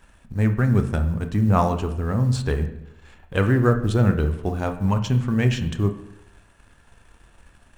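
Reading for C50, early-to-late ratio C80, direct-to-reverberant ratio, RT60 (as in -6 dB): 10.5 dB, 13.5 dB, 7.0 dB, 0.85 s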